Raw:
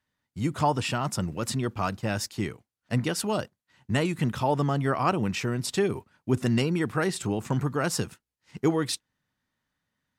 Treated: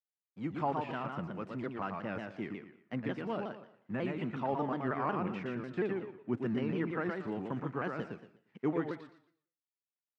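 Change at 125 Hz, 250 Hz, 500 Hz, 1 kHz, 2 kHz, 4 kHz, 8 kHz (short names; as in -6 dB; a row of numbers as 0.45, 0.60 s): -13.0 dB, -7.5 dB, -7.5 dB, -7.5 dB, -8.5 dB, -19.5 dB, under -35 dB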